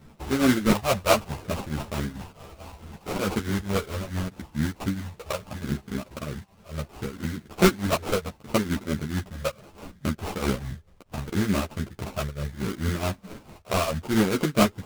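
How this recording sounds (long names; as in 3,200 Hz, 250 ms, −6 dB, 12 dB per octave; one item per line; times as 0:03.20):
phaser sweep stages 12, 0.71 Hz, lowest notch 260–2,100 Hz
aliases and images of a low sample rate 1,800 Hz, jitter 20%
tremolo triangle 4.6 Hz, depth 85%
a shimmering, thickened sound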